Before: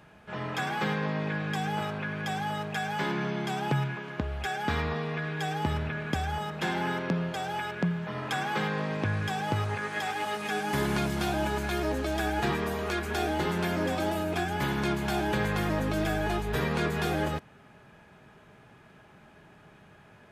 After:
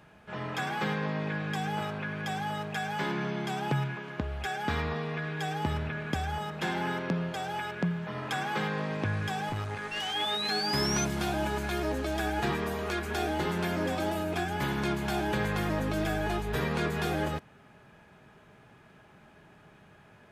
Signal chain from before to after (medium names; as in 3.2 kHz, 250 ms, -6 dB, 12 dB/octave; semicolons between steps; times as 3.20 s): 9.91–11.05 s: painted sound rise 2.7–6.2 kHz -32 dBFS; 9.49–10.14 s: valve stage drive 26 dB, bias 0.5; trim -1.5 dB